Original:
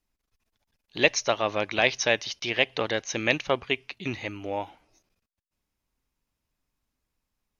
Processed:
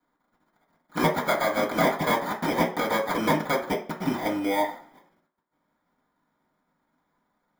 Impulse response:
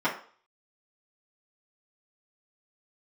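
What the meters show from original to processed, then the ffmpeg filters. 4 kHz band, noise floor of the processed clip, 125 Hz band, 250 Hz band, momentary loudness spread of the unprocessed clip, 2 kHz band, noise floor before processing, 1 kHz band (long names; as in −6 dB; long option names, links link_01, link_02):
−6.0 dB, −76 dBFS, +5.0 dB, +7.0 dB, 12 LU, −3.0 dB, −84 dBFS, +7.0 dB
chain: -filter_complex "[0:a]aeval=exprs='if(lt(val(0),0),0.708*val(0),val(0))':channel_layout=same,acompressor=threshold=-34dB:ratio=2.5,acrusher=samples=16:mix=1:aa=0.000001,aemphasis=mode=production:type=50kf[link_01];[1:a]atrim=start_sample=2205[link_02];[link_01][link_02]afir=irnorm=-1:irlink=0,volume=-1.5dB"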